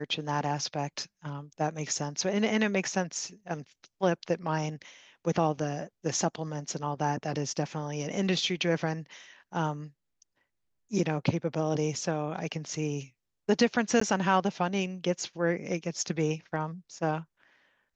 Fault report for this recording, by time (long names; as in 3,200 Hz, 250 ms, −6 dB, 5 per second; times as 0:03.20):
0:14.00–0:14.01: drop-out 14 ms